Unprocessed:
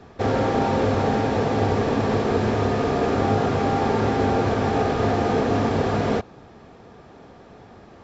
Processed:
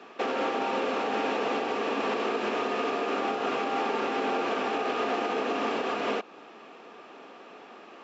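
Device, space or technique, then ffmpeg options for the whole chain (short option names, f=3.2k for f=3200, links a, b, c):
laptop speaker: -af "highpass=f=260:w=0.5412,highpass=f=260:w=1.3066,equalizer=f=1.2k:t=o:w=0.54:g=6,equalizer=f=2.7k:t=o:w=0.54:g=12,alimiter=limit=-17.5dB:level=0:latency=1:release=231,volume=-2dB"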